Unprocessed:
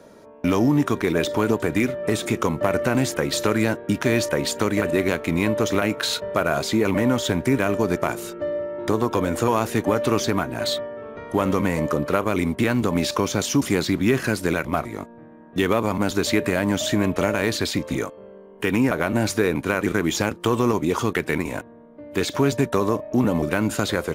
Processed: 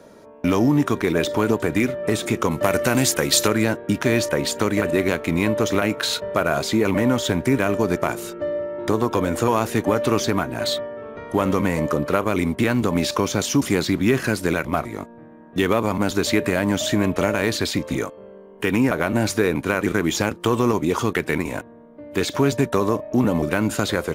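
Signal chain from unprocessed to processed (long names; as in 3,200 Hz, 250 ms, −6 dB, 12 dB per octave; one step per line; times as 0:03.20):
0:02.51–0:03.48: high-shelf EQ 3,200 Hz +10.5 dB
level +1 dB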